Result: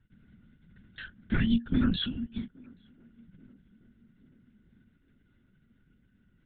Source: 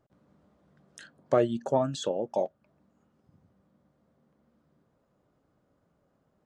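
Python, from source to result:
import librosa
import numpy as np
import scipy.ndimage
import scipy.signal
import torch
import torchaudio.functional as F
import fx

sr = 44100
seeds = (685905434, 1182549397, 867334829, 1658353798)

y = fx.brickwall_bandstop(x, sr, low_hz=300.0, high_hz=1300.0)
y = fx.lpc_vocoder(y, sr, seeds[0], excitation='whisper', order=10)
y = fx.echo_banded(y, sr, ms=829, feedback_pct=59, hz=430.0, wet_db=-23.0)
y = y * librosa.db_to_amplitude(8.0)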